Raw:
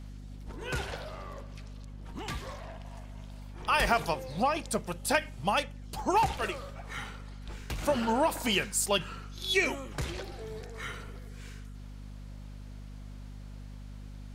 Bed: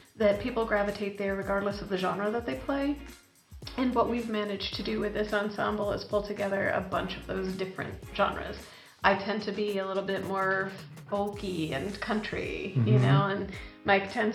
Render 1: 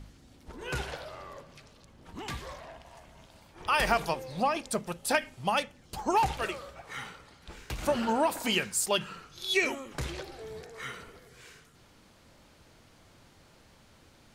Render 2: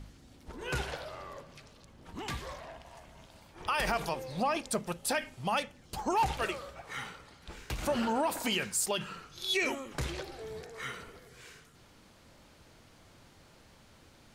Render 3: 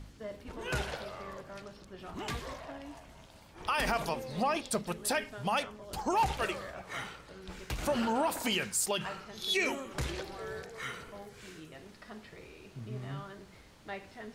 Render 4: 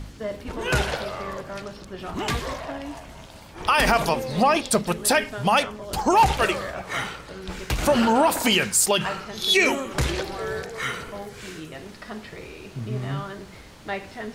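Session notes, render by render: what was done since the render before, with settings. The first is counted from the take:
de-hum 50 Hz, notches 5
peak limiter -21 dBFS, peak gain reduction 8 dB
add bed -18 dB
trim +11.5 dB

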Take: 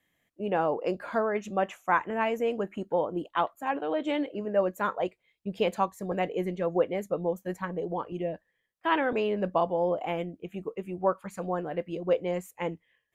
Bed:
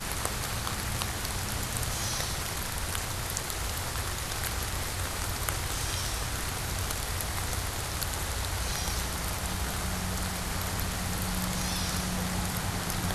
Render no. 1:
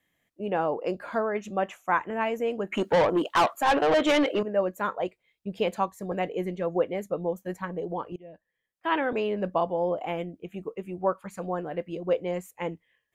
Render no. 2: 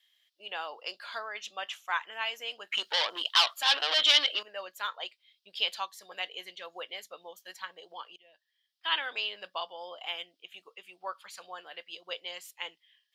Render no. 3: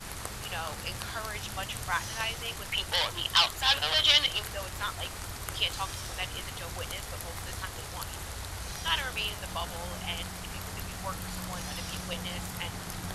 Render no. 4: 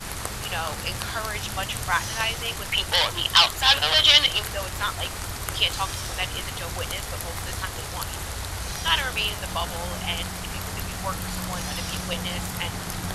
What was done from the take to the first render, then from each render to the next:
2.72–4.43 s: overdrive pedal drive 24 dB, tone 6.9 kHz, clips at -13.5 dBFS; 8.16–8.96 s: fade in linear, from -23 dB
high-pass 1.5 kHz 12 dB/octave; high-order bell 4 kHz +13.5 dB 1.1 oct
add bed -7 dB
trim +7 dB; peak limiter -2 dBFS, peak gain reduction 1.5 dB

